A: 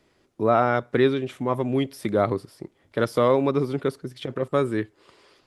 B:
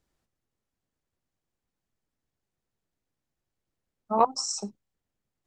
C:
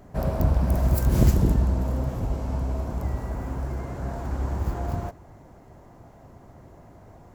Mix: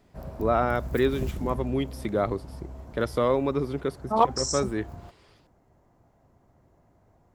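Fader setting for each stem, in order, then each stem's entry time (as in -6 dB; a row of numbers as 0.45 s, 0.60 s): -4.0 dB, +1.0 dB, -13.5 dB; 0.00 s, 0.00 s, 0.00 s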